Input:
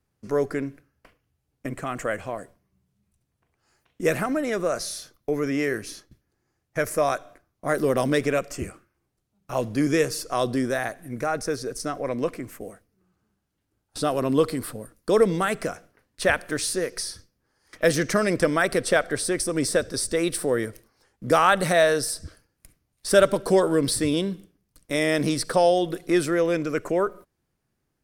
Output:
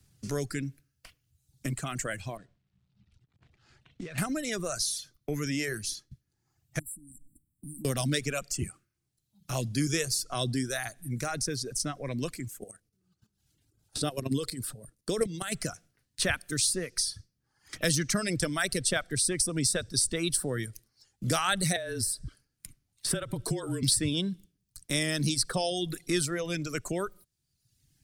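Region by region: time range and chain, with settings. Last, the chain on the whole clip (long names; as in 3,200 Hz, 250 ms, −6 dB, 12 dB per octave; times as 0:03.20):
0:02.37–0:04.18: variable-slope delta modulation 64 kbit/s + low-pass filter 2,500 Hz + downward compressor 16 to 1, threshold −34 dBFS
0:06.79–0:07.85: linear-phase brick-wall band-stop 340–7,400 Hz + downward compressor 2.5 to 1, threshold −51 dBFS + comb filter 4.3 ms, depth 34%
0:12.48–0:15.52: parametric band 440 Hz +5.5 dB 1.3 octaves + output level in coarse steps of 10 dB
0:21.76–0:23.83: frequency shifter −28 Hz + dynamic equaliser 5,700 Hz, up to −8 dB, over −43 dBFS, Q 0.87 + downward compressor 5 to 1, threshold −22 dBFS
whole clip: reverb reduction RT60 1 s; octave-band graphic EQ 125/250/500/1,000/2,000/4,000/8,000 Hz +6/−3/−9/−8/−3/+4/+6 dB; multiband upward and downward compressor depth 40%; level −1 dB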